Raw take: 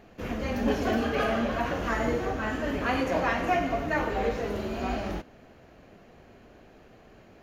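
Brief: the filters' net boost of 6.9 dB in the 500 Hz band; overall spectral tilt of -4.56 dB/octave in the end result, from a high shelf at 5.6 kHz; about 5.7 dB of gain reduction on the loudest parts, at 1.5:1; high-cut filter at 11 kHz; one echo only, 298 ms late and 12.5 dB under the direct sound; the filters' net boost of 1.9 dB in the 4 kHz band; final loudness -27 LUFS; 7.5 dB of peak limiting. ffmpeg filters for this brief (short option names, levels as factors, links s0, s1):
-af "lowpass=11000,equalizer=f=500:t=o:g=8.5,equalizer=f=4000:t=o:g=5.5,highshelf=f=5600:g=-8,acompressor=threshold=0.0224:ratio=1.5,alimiter=limit=0.075:level=0:latency=1,aecho=1:1:298:0.237,volume=1.68"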